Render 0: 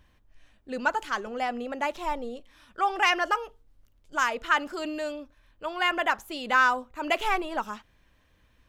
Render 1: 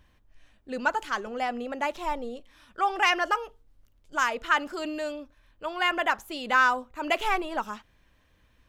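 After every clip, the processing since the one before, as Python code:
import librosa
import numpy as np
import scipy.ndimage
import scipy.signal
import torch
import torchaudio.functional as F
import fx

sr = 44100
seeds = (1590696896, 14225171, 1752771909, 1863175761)

y = x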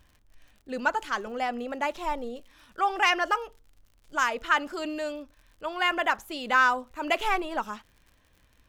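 y = fx.dmg_crackle(x, sr, seeds[0], per_s=76.0, level_db=-46.0)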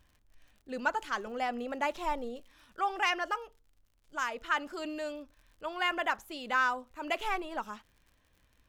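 y = fx.rider(x, sr, range_db=10, speed_s=2.0)
y = y * librosa.db_to_amplitude(-6.5)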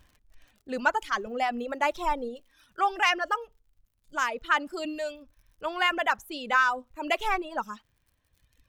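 y = fx.dereverb_blind(x, sr, rt60_s=1.6)
y = y * librosa.db_to_amplitude(6.0)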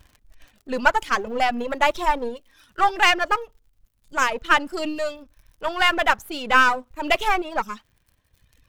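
y = np.where(x < 0.0, 10.0 ** (-7.0 / 20.0) * x, x)
y = y * librosa.db_to_amplitude(9.0)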